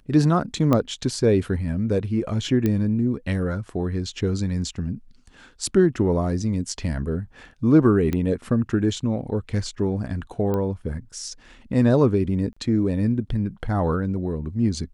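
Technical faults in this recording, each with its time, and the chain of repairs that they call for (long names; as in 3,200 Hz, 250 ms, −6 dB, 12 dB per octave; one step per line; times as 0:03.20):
0:00.73: click −9 dBFS
0:02.66: click −11 dBFS
0:08.13: click −13 dBFS
0:10.54: click −15 dBFS
0:12.53–0:12.56: drop-out 35 ms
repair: click removal
repair the gap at 0:12.53, 35 ms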